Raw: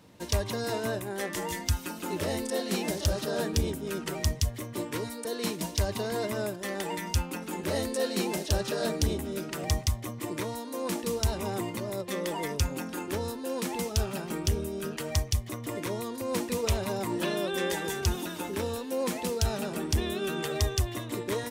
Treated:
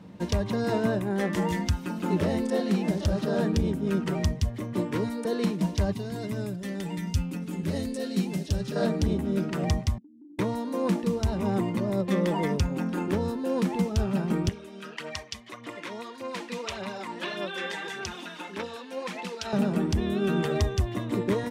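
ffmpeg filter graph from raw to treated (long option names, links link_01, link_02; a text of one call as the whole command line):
ffmpeg -i in.wav -filter_complex "[0:a]asettb=1/sr,asplit=3[link_01][link_02][link_03];[link_01]atrim=end=5.924[link_04];[link_02]atrim=start=5.92:end=8.76,asetpts=PTS-STARTPTS,afade=type=in:duration=0.004:curve=qsin,afade=type=out:start_time=2.836:duration=0.004:curve=qsin,equalizer=frequency=840:width=0.35:gain=-13,aecho=1:1:7.2:0.4,atrim=end_sample=125244[link_05];[link_03]atrim=start=8.756[link_06];[link_04][link_05]acrossfade=duration=0.004:curve1=hsin:curve2=qsin[link_07];[link_07][link_06]acrossfade=duration=0.004:curve1=qsin:curve2=hsin,asettb=1/sr,asplit=3[link_08][link_09][link_10];[link_08]atrim=end=9.984[link_11];[link_09]atrim=start=9.98:end=10.39,asetpts=PTS-STARTPTS,afade=type=in:duration=0.004:curve=qsin,afade=type=out:start_time=0.406:duration=0.004:curve=qsin,asuperpass=centerf=280:order=4:qfactor=7.3,acompressor=threshold=-54dB:ratio=6:attack=3.2:release=140:knee=1:detection=peak[link_12];[link_10]atrim=start=10.386[link_13];[link_11][link_12]acrossfade=duration=0.004:curve1=hsin:curve2=qsin[link_14];[link_14][link_13]acrossfade=duration=0.004:curve1=qsin:curve2=hsin,asettb=1/sr,asplit=3[link_15][link_16][link_17];[link_15]atrim=end=14.494[link_18];[link_16]atrim=start=14.49:end=19.53,asetpts=PTS-STARTPTS,afade=type=in:duration=0.004:curve=qsin,afade=type=out:start_time=5.036:duration=0.004:curve=qsin,aphaser=in_gain=1:out_gain=1:delay=4.5:decay=0.44:speed=1.7:type=sinusoidal,bandpass=frequency=3000:width_type=q:width=0.63[link_19];[link_17]atrim=start=19.526[link_20];[link_18][link_19]acrossfade=duration=0.004:curve1=hsin:curve2=qsin[link_21];[link_21][link_20]acrossfade=duration=0.004:curve1=qsin:curve2=hsin,lowpass=frequency=2000:poles=1,equalizer=frequency=190:width=2.4:gain=10.5,alimiter=limit=-20.5dB:level=0:latency=1:release=474,volume=5dB" out.wav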